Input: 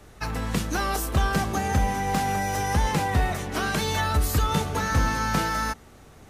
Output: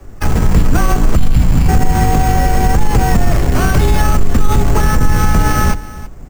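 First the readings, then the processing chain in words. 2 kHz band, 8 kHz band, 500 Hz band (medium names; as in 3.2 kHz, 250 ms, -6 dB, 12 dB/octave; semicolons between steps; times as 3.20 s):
+6.0 dB, +7.5 dB, +10.0 dB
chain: octave divider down 1 oct, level +4 dB; time-frequency box 1.15–1.69 s, 340–2100 Hz -17 dB; tilt EQ -2 dB/octave; in parallel at -5 dB: bit crusher 4-bit; on the sum: careless resampling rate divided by 6×, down filtered, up hold; frequency shift -35 Hz; on a send: delay 327 ms -18 dB; on the sum: loudness maximiser +7.5 dB; trim -1 dB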